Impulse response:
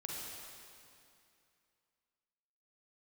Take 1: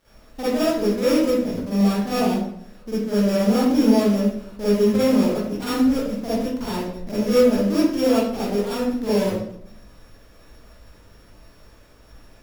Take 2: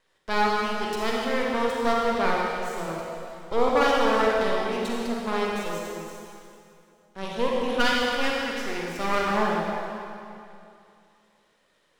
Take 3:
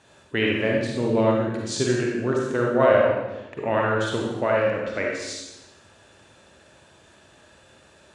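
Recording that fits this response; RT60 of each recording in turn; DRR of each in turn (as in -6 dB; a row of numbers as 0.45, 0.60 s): 2; 0.70, 2.5, 1.0 s; -11.5, -3.5, -2.0 dB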